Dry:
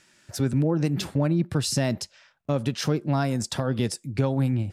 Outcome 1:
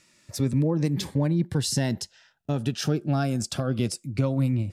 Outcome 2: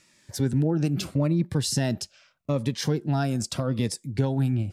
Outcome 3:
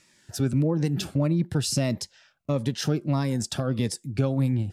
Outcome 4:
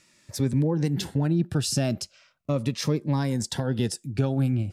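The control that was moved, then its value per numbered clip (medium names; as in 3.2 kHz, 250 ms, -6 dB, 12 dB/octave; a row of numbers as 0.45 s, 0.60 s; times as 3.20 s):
Shepard-style phaser, rate: 0.22 Hz, 0.81 Hz, 1.6 Hz, 0.39 Hz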